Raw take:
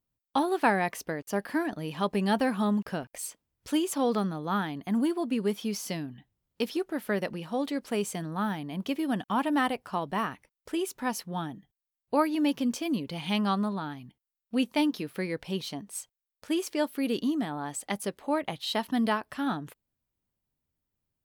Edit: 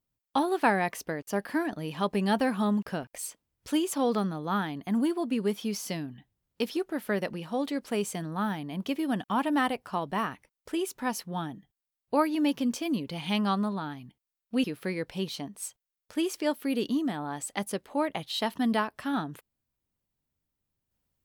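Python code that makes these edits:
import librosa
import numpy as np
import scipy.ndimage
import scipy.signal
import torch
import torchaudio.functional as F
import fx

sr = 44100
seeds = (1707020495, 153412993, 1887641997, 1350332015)

y = fx.edit(x, sr, fx.cut(start_s=14.64, length_s=0.33), tone=tone)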